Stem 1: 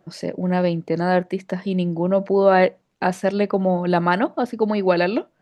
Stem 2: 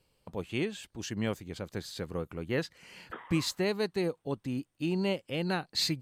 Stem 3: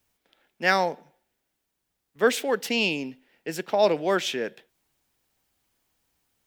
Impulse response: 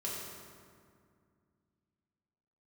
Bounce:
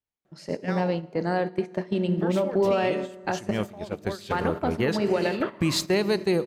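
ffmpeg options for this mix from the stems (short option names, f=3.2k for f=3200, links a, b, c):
-filter_complex "[0:a]acompressor=threshold=-29dB:ratio=2,adelay=250,volume=1dB,asplit=3[a][b][c];[a]atrim=end=3.51,asetpts=PTS-STARTPTS,afade=t=out:st=3.506:d=0.004:c=hsin[d];[b]atrim=start=3.51:end=4.3,asetpts=PTS-STARTPTS,volume=0[e];[c]atrim=start=4.3,asetpts=PTS-STARTPTS,afade=t=in:d=0.004:c=hsin[f];[d][e][f]concat=n=3:v=0:a=1,asplit=2[g][h];[h]volume=-8.5dB[i];[1:a]dynaudnorm=f=260:g=11:m=11dB,adelay=2300,volume=-1dB,asplit=2[j][k];[k]volume=-15.5dB[l];[2:a]aemphasis=mode=reproduction:type=cd,alimiter=limit=-16dB:level=0:latency=1:release=81,volume=-7.5dB,asplit=2[m][n];[n]volume=-18.5dB[o];[3:a]atrim=start_sample=2205[p];[i][l][o]amix=inputs=3:normalize=0[q];[q][p]afir=irnorm=-1:irlink=0[r];[g][j][m][r]amix=inputs=4:normalize=0,agate=range=-12dB:threshold=-25dB:ratio=16:detection=peak,alimiter=limit=-14dB:level=0:latency=1:release=168"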